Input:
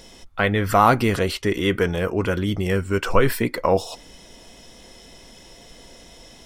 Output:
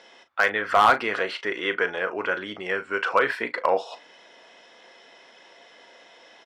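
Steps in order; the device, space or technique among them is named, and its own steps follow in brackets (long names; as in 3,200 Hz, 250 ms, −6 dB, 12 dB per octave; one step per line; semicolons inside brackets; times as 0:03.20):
megaphone (band-pass filter 580–3,000 Hz; parametric band 1,600 Hz +5 dB 0.49 octaves; hard clipping −9.5 dBFS, distortion −14 dB; double-tracking delay 38 ms −12 dB)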